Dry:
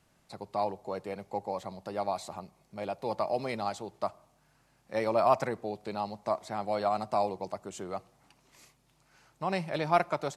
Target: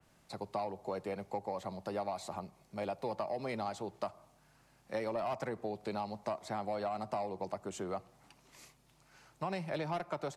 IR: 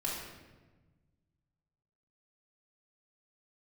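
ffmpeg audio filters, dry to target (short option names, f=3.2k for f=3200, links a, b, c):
-filter_complex "[0:a]acrossover=split=140|450|4600[a][b][c][d];[c]asoftclip=type=tanh:threshold=-25dB[e];[a][b][e][d]amix=inputs=4:normalize=0,acompressor=threshold=-34dB:ratio=10,adynamicequalizer=threshold=0.002:dfrequency=2700:dqfactor=0.7:tfrequency=2700:tqfactor=0.7:attack=5:release=100:ratio=0.375:range=2:mode=cutabove:tftype=highshelf,volume=1dB"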